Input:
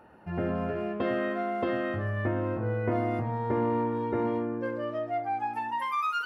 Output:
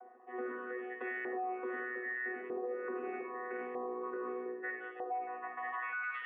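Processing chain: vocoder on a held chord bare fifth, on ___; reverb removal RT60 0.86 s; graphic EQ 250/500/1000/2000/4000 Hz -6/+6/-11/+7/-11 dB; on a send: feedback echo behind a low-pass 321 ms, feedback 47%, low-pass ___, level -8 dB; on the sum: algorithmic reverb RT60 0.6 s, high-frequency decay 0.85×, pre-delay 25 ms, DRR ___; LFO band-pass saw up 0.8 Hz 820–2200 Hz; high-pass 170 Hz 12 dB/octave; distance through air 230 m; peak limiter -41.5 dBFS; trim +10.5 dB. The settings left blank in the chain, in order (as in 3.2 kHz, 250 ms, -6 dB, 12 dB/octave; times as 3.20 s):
B3, 700 Hz, 3 dB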